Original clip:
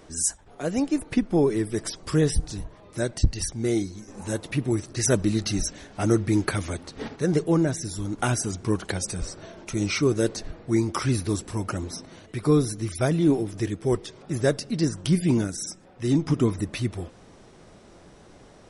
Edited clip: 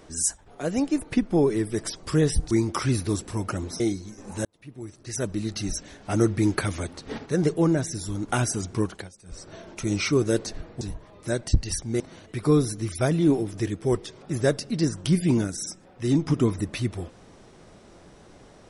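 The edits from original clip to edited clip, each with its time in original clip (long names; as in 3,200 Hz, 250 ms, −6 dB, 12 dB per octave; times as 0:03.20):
0:02.51–0:03.70: swap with 0:10.71–0:12.00
0:04.35–0:06.15: fade in
0:08.68–0:09.47: duck −22 dB, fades 0.34 s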